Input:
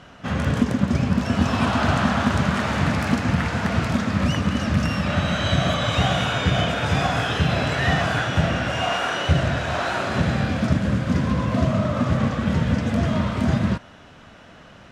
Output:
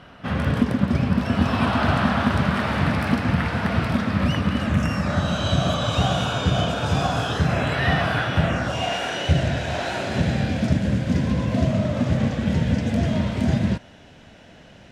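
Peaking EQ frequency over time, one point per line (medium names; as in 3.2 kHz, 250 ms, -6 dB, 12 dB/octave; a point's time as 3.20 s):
peaking EQ -11.5 dB 0.52 oct
4.54 s 6.8 kHz
5.34 s 2 kHz
7.30 s 2 kHz
7.77 s 6.9 kHz
8.40 s 6.9 kHz
8.86 s 1.2 kHz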